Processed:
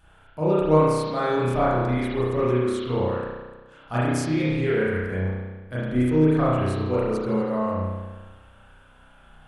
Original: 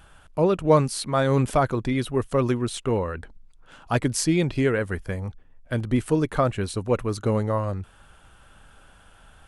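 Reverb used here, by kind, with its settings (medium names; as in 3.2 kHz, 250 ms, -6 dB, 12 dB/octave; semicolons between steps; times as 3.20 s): spring tank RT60 1.3 s, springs 32 ms, chirp 50 ms, DRR -9.5 dB; trim -9.5 dB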